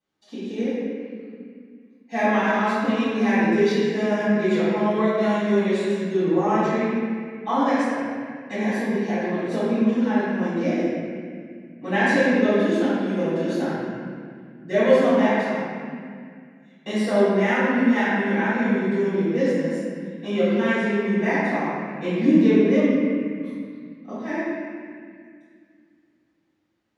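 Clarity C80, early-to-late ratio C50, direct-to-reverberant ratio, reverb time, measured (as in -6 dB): -2.5 dB, -5.0 dB, -15.0 dB, 2.1 s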